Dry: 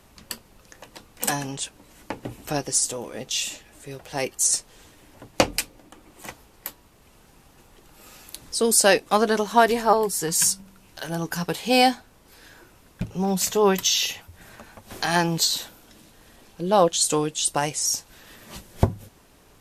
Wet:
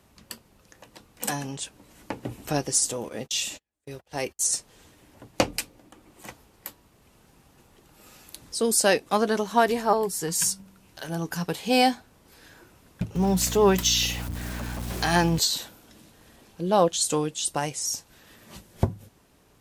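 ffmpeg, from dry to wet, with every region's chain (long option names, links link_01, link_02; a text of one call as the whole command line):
ffmpeg -i in.wav -filter_complex "[0:a]asettb=1/sr,asplit=3[link_01][link_02][link_03];[link_01]atrim=end=3.094[link_04];[link_02]atrim=start=3.09:end=4.45,asetpts=PTS-STARTPTS,afade=type=in:duration=0.004:curve=qsin,afade=type=out:start_time=1.356:duration=0.004:curve=qsin,agate=range=-37dB:threshold=-42dB:ratio=16:release=100:detection=peak,highpass=47,asubboost=boost=10.5:cutoff=65[link_05];[link_03]atrim=start=4.446[link_06];[link_04][link_05]acrossfade=duration=0.004:curve1=hsin:curve2=qsin[link_07];[link_07][link_06]acrossfade=duration=0.004:curve1=qsin:curve2=hsin,asettb=1/sr,asplit=3[link_08][link_09][link_10];[link_08]atrim=end=13.154[link_11];[link_09]atrim=start=13.15:end=15.39,asetpts=PTS-STARTPTS,afade=type=in:duration=0.004:curve=qsin,afade=type=out:start_time=2.236:duration=0.004:curve=qsin,aeval=exprs='val(0)+0.5*0.0211*sgn(val(0))':channel_layout=same,aeval=exprs='val(0)+0.0251*(sin(2*PI*60*n/s)+sin(2*PI*2*60*n/s)/2+sin(2*PI*3*60*n/s)/3+sin(2*PI*4*60*n/s)/4+sin(2*PI*5*60*n/s)/5)':channel_layout=same[link_12];[link_10]atrim=start=15.386[link_13];[link_11][link_12]acrossfade=duration=0.004:curve1=hsin:curve2=qsin[link_14];[link_14][link_13]acrossfade=duration=0.004:curve1=qsin:curve2=hsin,highpass=frequency=75:poles=1,lowshelf=frequency=280:gain=5,dynaudnorm=framelen=200:gausssize=21:maxgain=11.5dB,volume=-6dB" out.wav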